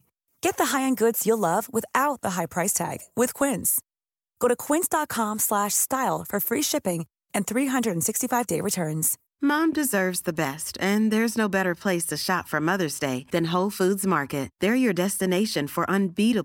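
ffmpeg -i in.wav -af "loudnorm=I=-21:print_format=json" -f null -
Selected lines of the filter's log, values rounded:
"input_i" : "-24.3",
"input_tp" : "-8.4",
"input_lra" : "0.8",
"input_thresh" : "-34.4",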